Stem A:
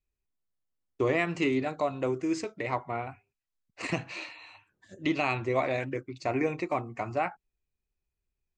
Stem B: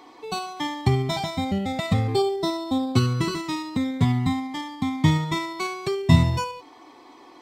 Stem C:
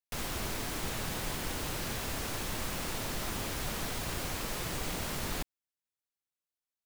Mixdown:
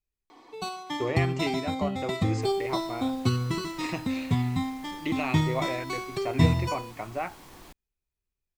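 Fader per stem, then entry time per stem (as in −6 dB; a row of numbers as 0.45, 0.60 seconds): −3.0, −5.0, −15.0 decibels; 0.00, 0.30, 2.30 seconds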